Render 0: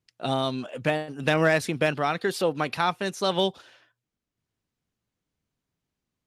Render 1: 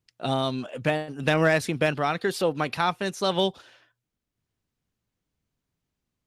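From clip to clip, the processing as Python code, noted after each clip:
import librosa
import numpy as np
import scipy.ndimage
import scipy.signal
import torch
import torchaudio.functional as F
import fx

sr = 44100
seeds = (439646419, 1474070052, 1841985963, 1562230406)

y = fx.low_shelf(x, sr, hz=85.0, db=6.0)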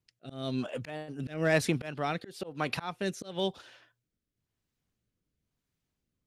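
y = fx.auto_swell(x, sr, attack_ms=306.0)
y = fx.rotary(y, sr, hz=1.0)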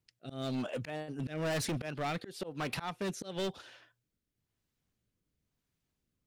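y = np.clip(x, -10.0 ** (-31.0 / 20.0), 10.0 ** (-31.0 / 20.0))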